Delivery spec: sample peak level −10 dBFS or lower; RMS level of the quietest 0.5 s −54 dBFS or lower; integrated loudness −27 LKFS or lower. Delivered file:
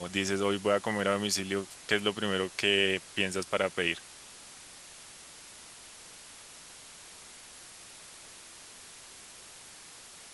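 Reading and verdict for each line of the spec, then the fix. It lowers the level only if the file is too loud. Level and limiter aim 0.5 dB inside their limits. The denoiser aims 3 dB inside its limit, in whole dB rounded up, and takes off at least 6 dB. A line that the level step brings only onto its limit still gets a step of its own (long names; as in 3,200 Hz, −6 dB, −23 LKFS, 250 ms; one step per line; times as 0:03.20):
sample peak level −11.0 dBFS: in spec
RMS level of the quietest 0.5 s −50 dBFS: out of spec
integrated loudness −29.5 LKFS: in spec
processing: broadband denoise 7 dB, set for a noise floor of −50 dBFS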